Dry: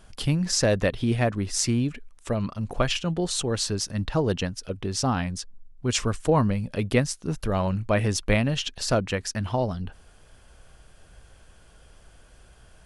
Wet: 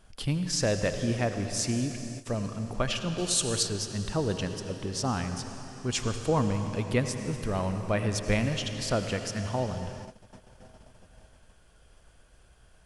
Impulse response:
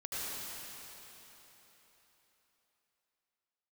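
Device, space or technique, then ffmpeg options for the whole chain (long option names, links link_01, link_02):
keyed gated reverb: -filter_complex "[0:a]asplit=3[link_01][link_02][link_03];[1:a]atrim=start_sample=2205[link_04];[link_02][link_04]afir=irnorm=-1:irlink=0[link_05];[link_03]apad=whole_len=566848[link_06];[link_05][link_06]sidechaingate=range=-33dB:threshold=-49dB:ratio=16:detection=peak,volume=-8.5dB[link_07];[link_01][link_07]amix=inputs=2:normalize=0,asettb=1/sr,asplit=3[link_08][link_09][link_10];[link_08]atrim=end=3.184[link_11];[link_09]atrim=start=3.18:end=3.63,asetpts=PTS-STARTPTS,afade=type=in:duration=0.004:curve=qsin,afade=type=out:start_time=0.446:duration=0.004:curve=qsin,highshelf=frequency=4800:gain=11.5[link_12];[link_10]atrim=start=3.626[link_13];[link_11][link_12]acrossfade=duration=0.004:curve1=hsin:curve2=qsin[link_14];[link_14][link_13]acrossfade=duration=0.004:curve1=qsin:curve2=hsin,volume=-6.5dB"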